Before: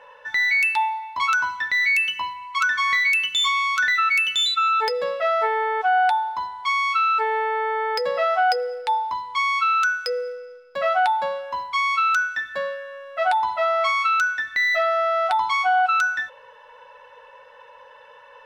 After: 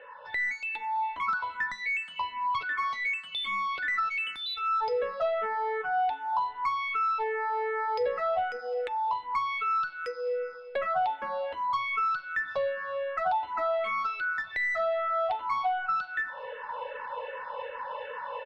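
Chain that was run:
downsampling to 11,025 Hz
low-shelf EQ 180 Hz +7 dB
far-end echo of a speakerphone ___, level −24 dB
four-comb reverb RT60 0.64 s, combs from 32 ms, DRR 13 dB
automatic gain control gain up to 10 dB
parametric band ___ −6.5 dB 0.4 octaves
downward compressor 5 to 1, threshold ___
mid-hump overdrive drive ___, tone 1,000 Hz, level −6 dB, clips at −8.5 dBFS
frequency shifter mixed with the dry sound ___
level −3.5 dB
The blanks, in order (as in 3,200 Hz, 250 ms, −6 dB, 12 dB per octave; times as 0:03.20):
210 ms, 70 Hz, −27 dBFS, 16 dB, −2.6 Hz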